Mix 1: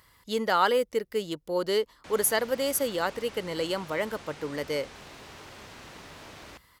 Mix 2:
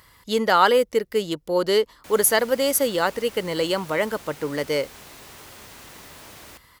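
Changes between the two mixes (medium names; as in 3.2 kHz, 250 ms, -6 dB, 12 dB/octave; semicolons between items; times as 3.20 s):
speech +6.5 dB; background: remove distance through air 86 m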